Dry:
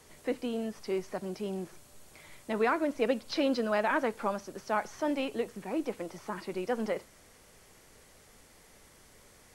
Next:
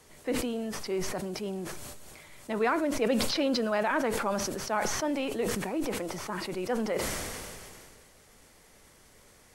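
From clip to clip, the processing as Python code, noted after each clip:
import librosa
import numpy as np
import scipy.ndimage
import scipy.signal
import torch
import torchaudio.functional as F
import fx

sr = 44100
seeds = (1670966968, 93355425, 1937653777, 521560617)

y = fx.sustainer(x, sr, db_per_s=25.0)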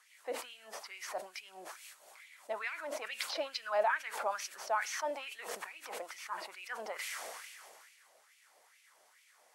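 y = fx.filter_lfo_highpass(x, sr, shape='sine', hz=2.3, low_hz=610.0, high_hz=2500.0, q=3.2)
y = F.gain(torch.from_numpy(y), -9.0).numpy()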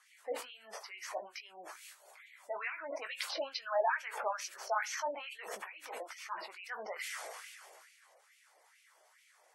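y = fx.spec_gate(x, sr, threshold_db=-20, keep='strong')
y = fx.chorus_voices(y, sr, voices=4, hz=1.4, base_ms=17, depth_ms=3.0, mix_pct=30)
y = F.gain(torch.from_numpy(y), 2.0).numpy()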